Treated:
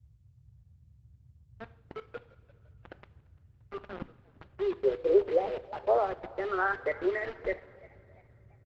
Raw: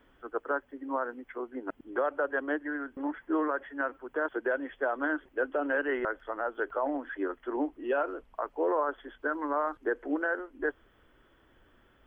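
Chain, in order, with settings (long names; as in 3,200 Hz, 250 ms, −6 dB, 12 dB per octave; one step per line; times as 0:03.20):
gliding playback speed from 160% → 119%
noise reduction from a noise print of the clip's start 8 dB
low-pass that shuts in the quiet parts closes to 680 Hz, open at −28 dBFS
low-shelf EQ 420 Hz +9.5 dB
low-pass filter sweep 220 Hz → 2,900 Hz, 0:04.12–0:07.46
rotating-speaker cabinet horn 1 Hz
bit reduction 6 bits
coupled-rooms reverb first 0.5 s, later 3.5 s, from −17 dB, DRR 12.5 dB
noise in a band 55–130 Hz −58 dBFS
high-frequency loss of the air 400 metres
echo with shifted repeats 344 ms, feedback 39%, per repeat +84 Hz, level −23 dB
Opus 12 kbit/s 48,000 Hz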